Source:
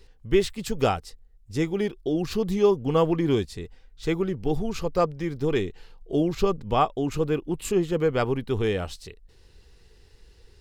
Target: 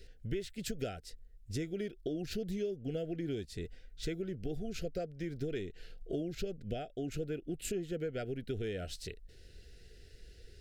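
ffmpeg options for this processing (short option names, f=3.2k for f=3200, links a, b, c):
-af "acompressor=threshold=-34dB:ratio=6,asuperstop=centerf=1000:order=12:qfactor=1.6,volume=-1dB"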